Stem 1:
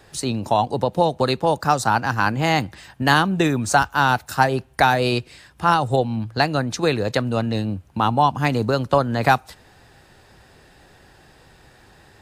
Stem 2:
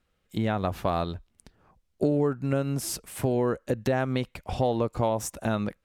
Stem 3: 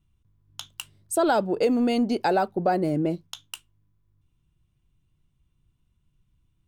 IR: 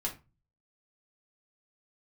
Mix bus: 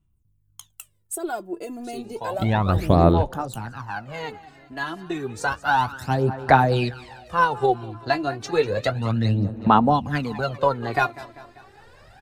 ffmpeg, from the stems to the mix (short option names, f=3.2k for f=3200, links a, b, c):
-filter_complex "[0:a]dynaudnorm=f=310:g=3:m=6.5dB,flanger=delay=3.8:depth=7.1:regen=-40:speed=0.36:shape=sinusoidal,adelay=1700,volume=-4dB,afade=t=in:st=4.98:d=0.65:silence=0.354813,asplit=2[a][b];[b]volume=-17dB[c];[1:a]acontrast=88,adelay=2050,volume=-1.5dB[d];[2:a]aexciter=amount=6.9:drive=3.9:freq=6.6k,volume=-10.5dB,asplit=2[e][f];[f]apad=whole_len=348122[g];[d][g]sidechaingate=range=-33dB:threshold=-59dB:ratio=16:detection=peak[h];[c]aecho=0:1:196|392|588|784|980|1176|1372|1568:1|0.55|0.303|0.166|0.0915|0.0503|0.0277|0.0152[i];[a][h][e][i]amix=inputs=4:normalize=0,highshelf=f=4.4k:g=-8,aphaser=in_gain=1:out_gain=1:delay=3:decay=0.7:speed=0.31:type=sinusoidal"